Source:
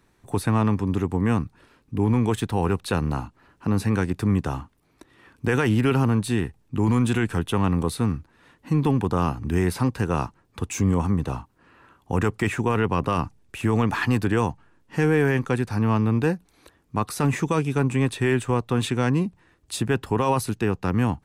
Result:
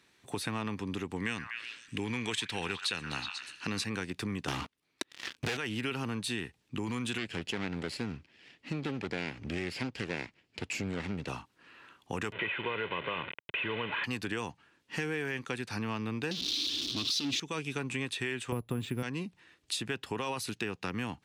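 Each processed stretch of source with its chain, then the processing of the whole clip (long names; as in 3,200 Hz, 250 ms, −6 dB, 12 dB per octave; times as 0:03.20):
0:01.16–0:03.84: flat-topped bell 3,700 Hz +8.5 dB 2.8 octaves + echo through a band-pass that steps 122 ms, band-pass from 1,300 Hz, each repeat 0.7 octaves, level −7.5 dB
0:04.48–0:05.57: leveller curve on the samples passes 5 + downward compressor, threshold −16 dBFS
0:07.18–0:11.28: lower of the sound and its delayed copy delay 0.4 ms + high-frequency loss of the air 62 metres
0:12.32–0:14.04: linear delta modulator 16 kbit/s, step −24.5 dBFS + high-pass filter 130 Hz + comb filter 2 ms, depth 49%
0:16.31–0:17.40: converter with a step at zero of −30.5 dBFS + drawn EQ curve 120 Hz 0 dB, 170 Hz −6 dB, 290 Hz +10 dB, 700 Hz −20 dB, 1,100 Hz −9 dB, 1,900 Hz −15 dB, 3,500 Hz +14 dB, 5,700 Hz +9 dB, 8,300 Hz −7 dB + power curve on the samples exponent 0.7
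0:18.52–0:19.03: spectral tilt −4 dB per octave + bad sample-rate conversion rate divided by 4×, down none, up hold
whole clip: meter weighting curve D; downward compressor 4 to 1, threshold −27 dBFS; level −5.5 dB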